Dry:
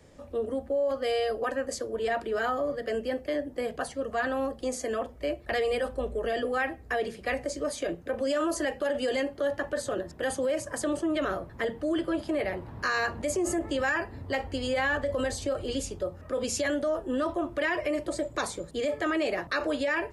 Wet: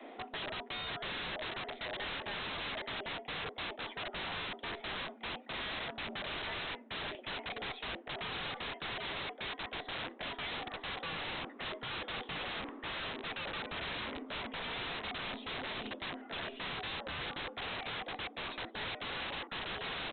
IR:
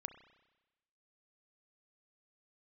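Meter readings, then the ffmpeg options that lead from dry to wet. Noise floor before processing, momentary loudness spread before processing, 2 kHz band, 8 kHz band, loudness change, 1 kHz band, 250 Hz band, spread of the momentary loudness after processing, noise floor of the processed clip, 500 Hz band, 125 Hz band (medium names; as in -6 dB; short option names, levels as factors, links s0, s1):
-48 dBFS, 5 LU, -7.0 dB, under -40 dB, -9.5 dB, -7.5 dB, -16.0 dB, 2 LU, -53 dBFS, -17.5 dB, -7.0 dB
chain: -af "highpass=55,afreqshift=170,equalizer=f=240:t=o:w=2.9:g=-4,areverse,acompressor=threshold=0.00794:ratio=12,areverse,aeval=exprs='0.0211*(cos(1*acos(clip(val(0)/0.0211,-1,1)))-cos(1*PI/2))+0.00299*(cos(3*acos(clip(val(0)/0.0211,-1,1)))-cos(3*PI/2))+0.000237*(cos(6*acos(clip(val(0)/0.0211,-1,1)))-cos(6*PI/2))':c=same,aresample=8000,aeval=exprs='(mod(282*val(0)+1,2)-1)/282':c=same,aresample=44100,volume=5.01"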